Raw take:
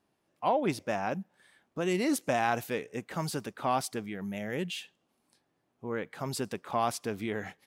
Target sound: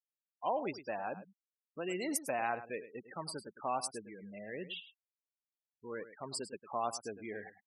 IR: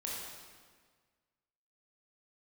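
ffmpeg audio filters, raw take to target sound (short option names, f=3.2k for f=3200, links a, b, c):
-af "afftfilt=real='re*gte(hypot(re,im),0.0251)':imag='im*gte(hypot(re,im),0.0251)':win_size=1024:overlap=0.75,bass=f=250:g=-10,treble=f=4k:g=10,aecho=1:1:104:0.211,volume=-6.5dB"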